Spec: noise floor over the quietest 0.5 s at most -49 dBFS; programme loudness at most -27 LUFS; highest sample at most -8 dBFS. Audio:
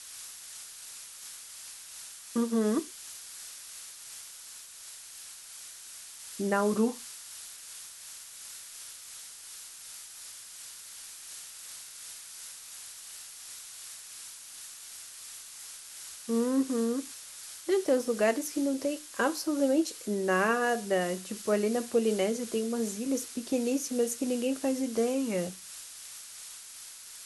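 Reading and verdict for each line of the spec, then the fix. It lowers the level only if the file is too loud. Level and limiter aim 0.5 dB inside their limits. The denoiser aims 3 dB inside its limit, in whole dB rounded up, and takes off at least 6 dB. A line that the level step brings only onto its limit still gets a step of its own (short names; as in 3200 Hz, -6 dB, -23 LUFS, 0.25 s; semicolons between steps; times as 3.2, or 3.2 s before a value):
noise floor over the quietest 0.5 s -47 dBFS: fail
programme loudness -33.0 LUFS: OK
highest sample -13.5 dBFS: OK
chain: denoiser 6 dB, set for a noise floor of -47 dBFS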